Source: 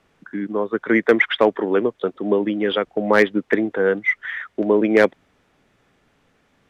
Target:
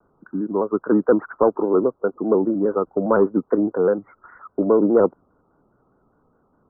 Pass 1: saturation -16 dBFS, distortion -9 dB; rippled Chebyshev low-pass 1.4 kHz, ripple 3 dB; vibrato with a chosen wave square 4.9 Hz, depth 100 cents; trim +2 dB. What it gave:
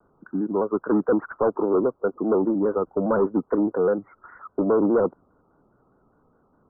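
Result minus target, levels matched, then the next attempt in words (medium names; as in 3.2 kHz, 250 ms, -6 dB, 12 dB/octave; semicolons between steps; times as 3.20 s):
saturation: distortion +10 dB
saturation -6.5 dBFS, distortion -19 dB; rippled Chebyshev low-pass 1.4 kHz, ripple 3 dB; vibrato with a chosen wave square 4.9 Hz, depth 100 cents; trim +2 dB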